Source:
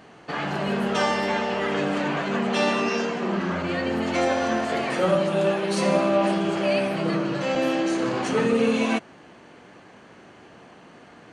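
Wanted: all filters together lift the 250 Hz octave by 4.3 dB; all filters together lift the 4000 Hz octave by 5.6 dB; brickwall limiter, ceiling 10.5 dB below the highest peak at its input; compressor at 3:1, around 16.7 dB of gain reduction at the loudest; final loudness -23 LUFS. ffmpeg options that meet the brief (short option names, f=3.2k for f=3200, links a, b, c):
-af "equalizer=f=250:t=o:g=5.5,equalizer=f=4k:t=o:g=7.5,acompressor=threshold=-38dB:ratio=3,volume=19.5dB,alimiter=limit=-14.5dB:level=0:latency=1"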